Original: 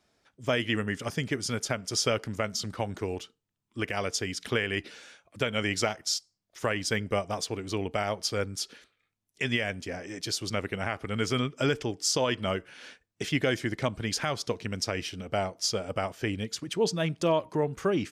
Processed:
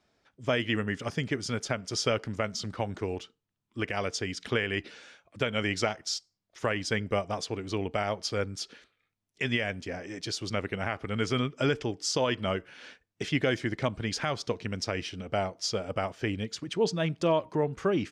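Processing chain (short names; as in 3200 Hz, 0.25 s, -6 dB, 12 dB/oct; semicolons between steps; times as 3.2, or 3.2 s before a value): air absorption 63 m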